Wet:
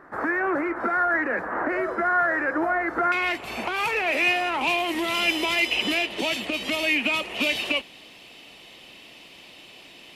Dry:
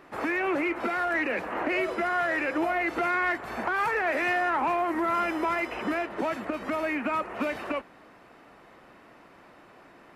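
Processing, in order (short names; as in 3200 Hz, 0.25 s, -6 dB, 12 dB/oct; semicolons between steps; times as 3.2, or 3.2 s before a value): resonant high shelf 2100 Hz -8.5 dB, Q 3, from 3.12 s +7 dB, from 4.61 s +13 dB; gain +1.5 dB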